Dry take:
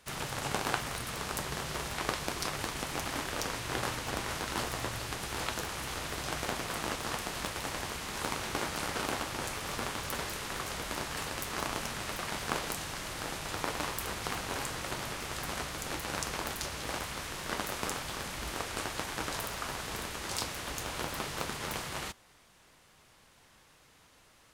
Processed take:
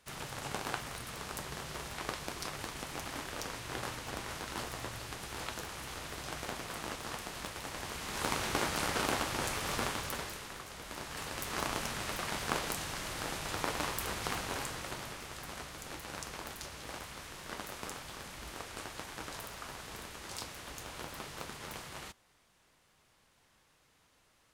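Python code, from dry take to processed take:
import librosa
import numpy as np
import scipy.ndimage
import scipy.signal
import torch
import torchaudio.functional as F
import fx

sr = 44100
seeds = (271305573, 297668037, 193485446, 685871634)

y = fx.gain(x, sr, db=fx.line((7.7, -5.5), (8.34, 1.5), (9.84, 1.5), (10.68, -10.0), (11.57, -0.5), (14.35, -0.5), (15.36, -7.5)))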